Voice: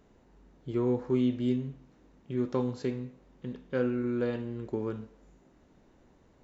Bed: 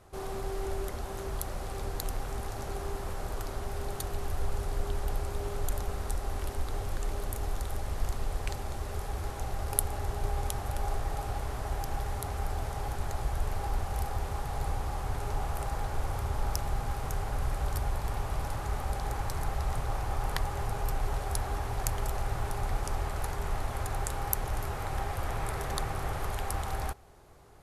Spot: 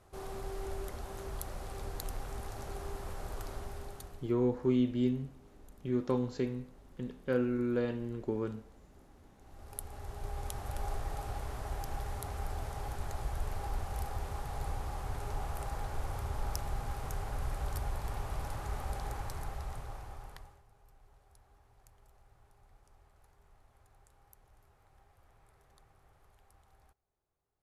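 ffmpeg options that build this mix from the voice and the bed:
ffmpeg -i stem1.wav -i stem2.wav -filter_complex "[0:a]adelay=3550,volume=-1.5dB[link_01];[1:a]volume=15.5dB,afade=type=out:start_time=3.53:duration=0.81:silence=0.0944061,afade=type=in:start_time=9.41:duration=1.39:silence=0.0891251,afade=type=out:start_time=18.98:duration=1.64:silence=0.0473151[link_02];[link_01][link_02]amix=inputs=2:normalize=0" out.wav

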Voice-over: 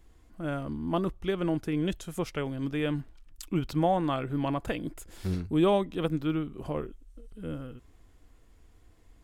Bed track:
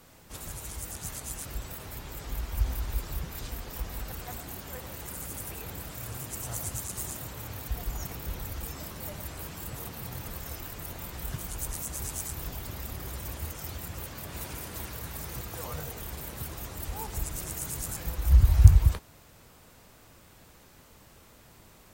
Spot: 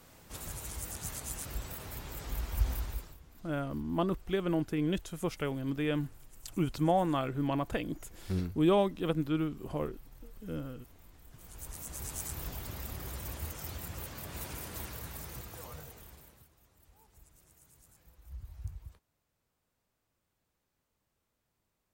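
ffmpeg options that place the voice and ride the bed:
ffmpeg -i stem1.wav -i stem2.wav -filter_complex "[0:a]adelay=3050,volume=-2dB[link_01];[1:a]volume=17dB,afade=type=out:start_time=2.75:duration=0.42:silence=0.1,afade=type=in:start_time=11.31:duration=1:silence=0.112202,afade=type=out:start_time=14.8:duration=1.69:silence=0.0630957[link_02];[link_01][link_02]amix=inputs=2:normalize=0" out.wav

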